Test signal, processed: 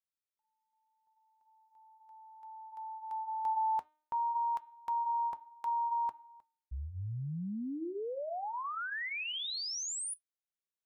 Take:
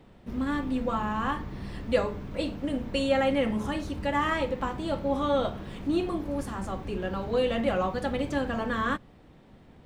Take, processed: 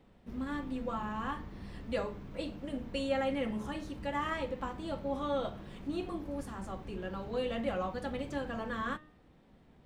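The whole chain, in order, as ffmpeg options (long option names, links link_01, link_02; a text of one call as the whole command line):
ffmpeg -i in.wav -af "flanger=delay=3.8:depth=2.3:regen=-76:speed=0.64:shape=sinusoidal,bandreject=frequency=305.5:width_type=h:width=4,bandreject=frequency=611:width_type=h:width=4,bandreject=frequency=916.5:width_type=h:width=4,bandreject=frequency=1222:width_type=h:width=4,bandreject=frequency=1527.5:width_type=h:width=4,bandreject=frequency=1833:width_type=h:width=4,bandreject=frequency=2138.5:width_type=h:width=4,bandreject=frequency=2444:width_type=h:width=4,bandreject=frequency=2749.5:width_type=h:width=4,bandreject=frequency=3055:width_type=h:width=4,bandreject=frequency=3360.5:width_type=h:width=4,bandreject=frequency=3666:width_type=h:width=4,bandreject=frequency=3971.5:width_type=h:width=4,volume=-3.5dB" out.wav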